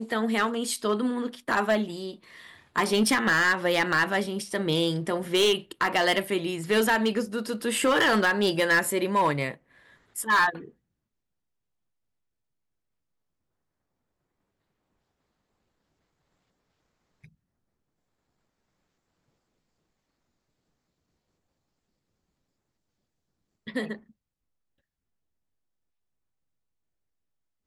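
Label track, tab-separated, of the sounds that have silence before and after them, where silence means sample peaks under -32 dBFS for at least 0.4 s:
2.760000	9.540000	sound
10.160000	10.580000	sound
23.680000	23.950000	sound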